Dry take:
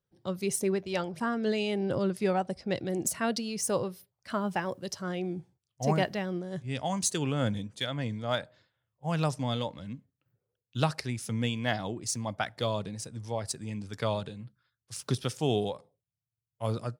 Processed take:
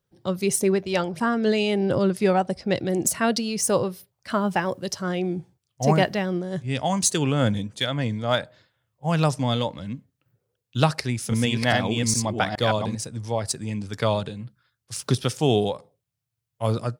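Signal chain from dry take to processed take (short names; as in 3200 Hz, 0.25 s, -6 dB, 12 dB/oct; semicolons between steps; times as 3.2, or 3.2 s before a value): 10.9–12.95 reverse delay 0.414 s, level -2.5 dB; gain +7.5 dB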